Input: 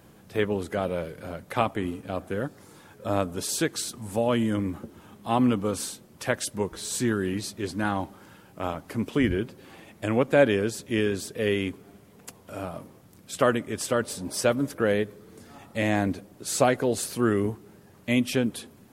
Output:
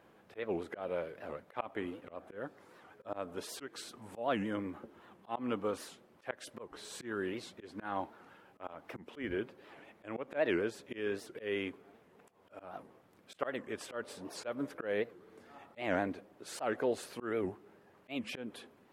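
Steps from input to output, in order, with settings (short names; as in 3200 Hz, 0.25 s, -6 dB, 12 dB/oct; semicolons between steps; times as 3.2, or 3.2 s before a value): tone controls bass -14 dB, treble -15 dB; auto swell 0.179 s; record warp 78 rpm, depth 250 cents; gain -4.5 dB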